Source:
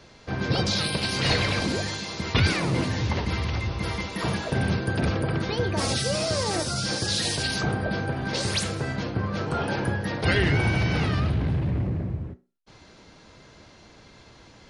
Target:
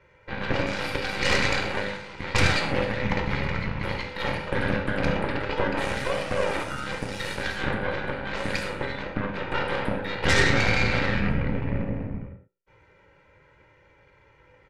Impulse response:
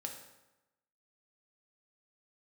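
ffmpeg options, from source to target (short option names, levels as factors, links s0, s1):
-filter_complex "[0:a]highshelf=f=3100:t=q:w=3:g=-11.5,aecho=1:1:2.1:0.92,aeval=exprs='0.531*(cos(1*acos(clip(val(0)/0.531,-1,1)))-cos(1*PI/2))+0.106*(cos(3*acos(clip(val(0)/0.531,-1,1)))-cos(3*PI/2))+0.119*(cos(6*acos(clip(val(0)/0.531,-1,1)))-cos(6*PI/2))':c=same[s0];[1:a]atrim=start_sample=2205,afade=t=out:st=0.19:d=0.01,atrim=end_sample=8820[s1];[s0][s1]afir=irnorm=-1:irlink=0"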